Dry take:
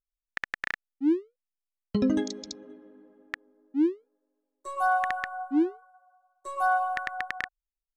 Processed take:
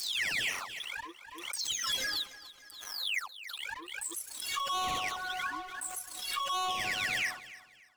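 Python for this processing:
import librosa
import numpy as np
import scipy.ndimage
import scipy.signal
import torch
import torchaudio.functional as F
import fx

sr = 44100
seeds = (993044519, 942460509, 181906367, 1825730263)

p1 = fx.spec_delay(x, sr, highs='early', ms=640)
p2 = scipy.signal.sosfilt(scipy.signal.butter(4, 1000.0, 'highpass', fs=sr, output='sos'), p1)
p3 = fx.peak_eq(p2, sr, hz=3300.0, db=13.0, octaves=0.21)
p4 = fx.leveller(p3, sr, passes=5)
p5 = fx.rider(p4, sr, range_db=3, speed_s=0.5)
p6 = p4 + (p5 * 10.0 ** (2.5 / 20.0))
p7 = fx.env_flanger(p6, sr, rest_ms=7.2, full_db=-18.5)
p8 = p7 + fx.echo_feedback(p7, sr, ms=290, feedback_pct=30, wet_db=-17.0, dry=0)
p9 = fx.pre_swell(p8, sr, db_per_s=48.0)
y = p9 * 10.0 ** (-8.0 / 20.0)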